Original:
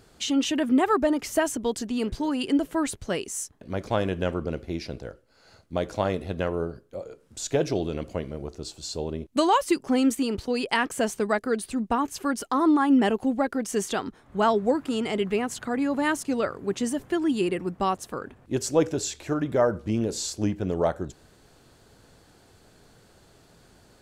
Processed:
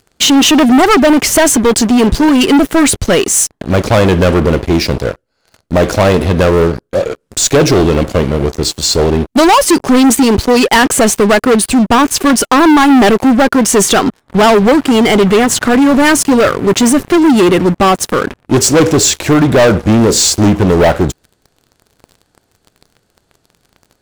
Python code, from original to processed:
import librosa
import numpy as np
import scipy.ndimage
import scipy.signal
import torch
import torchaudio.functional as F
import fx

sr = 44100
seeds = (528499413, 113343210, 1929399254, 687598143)

y = fx.leveller(x, sr, passes=5)
y = F.gain(torch.from_numpy(y), 5.5).numpy()